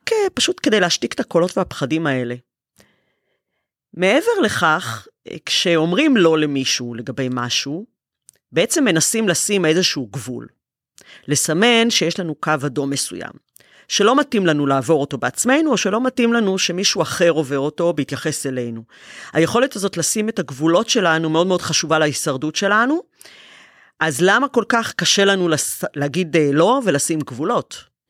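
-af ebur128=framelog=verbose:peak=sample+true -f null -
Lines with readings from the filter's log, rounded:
Integrated loudness:
  I:         -17.6 LUFS
  Threshold: -28.3 LUFS
Loudness range:
  LRA:         3.5 LU
  Threshold: -38.4 LUFS
  LRA low:   -20.5 LUFS
  LRA high:  -17.0 LUFS
Sample peak:
  Peak:       -2.6 dBFS
True peak:
  Peak:       -2.6 dBFS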